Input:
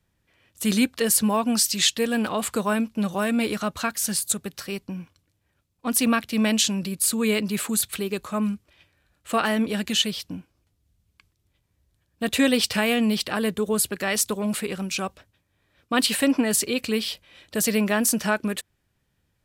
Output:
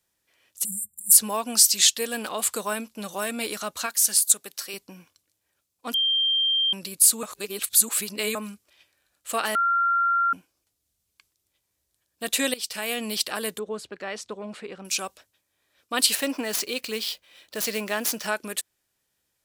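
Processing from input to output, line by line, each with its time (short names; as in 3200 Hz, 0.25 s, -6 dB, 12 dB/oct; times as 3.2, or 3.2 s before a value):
0.65–1.12 spectral delete 210–7200 Hz
3.86–4.74 HPF 350 Hz 6 dB/oct
5.94–6.73 bleep 3170 Hz -19 dBFS
7.23–8.35 reverse
9.55–10.33 bleep 1380 Hz -15.5 dBFS
12.54–13.08 fade in, from -18 dB
13.59–14.85 tape spacing loss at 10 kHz 31 dB
16.15–18.28 median filter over 5 samples
whole clip: tone controls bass -14 dB, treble +10 dB; gain -3.5 dB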